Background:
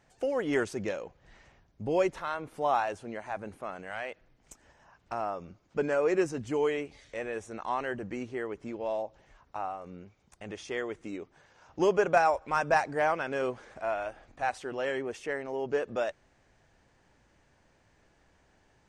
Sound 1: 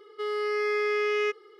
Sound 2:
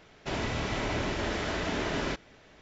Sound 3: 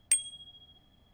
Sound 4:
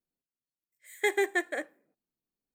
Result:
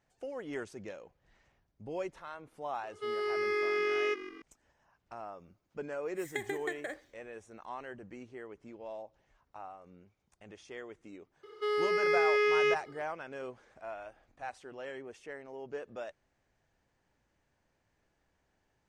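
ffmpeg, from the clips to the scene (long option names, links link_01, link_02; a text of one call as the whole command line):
ffmpeg -i bed.wav -i cue0.wav -i cue1.wav -i cue2.wav -i cue3.wav -filter_complex "[1:a]asplit=2[link_01][link_02];[0:a]volume=-11dB[link_03];[link_01]asplit=5[link_04][link_05][link_06][link_07][link_08];[link_05]adelay=153,afreqshift=-46,volume=-15dB[link_09];[link_06]adelay=306,afreqshift=-92,volume=-21.4dB[link_10];[link_07]adelay=459,afreqshift=-138,volume=-27.8dB[link_11];[link_08]adelay=612,afreqshift=-184,volume=-34.1dB[link_12];[link_04][link_09][link_10][link_11][link_12]amix=inputs=5:normalize=0[link_13];[4:a]acompressor=threshold=-42dB:ratio=4:attack=70:release=77:knee=1:detection=peak[link_14];[link_13]atrim=end=1.59,asetpts=PTS-STARTPTS,volume=-4.5dB,afade=type=in:duration=0.004:curve=hsin,afade=type=out:start_time=1.586:duration=0.004:curve=hsin,adelay=2830[link_15];[link_14]atrim=end=2.54,asetpts=PTS-STARTPTS,volume=-2dB,afade=type=in:duration=0.004:curve=hsin,afade=type=out:start_time=2.536:duration=0.004:curve=hsin,adelay=5320[link_16];[link_02]atrim=end=1.59,asetpts=PTS-STARTPTS,volume=-0.5dB,afade=type=in:duration=0.004:curve=hsin,afade=type=out:start_time=1.586:duration=0.004:curve=hsin,adelay=11430[link_17];[link_03][link_15][link_16][link_17]amix=inputs=4:normalize=0" out.wav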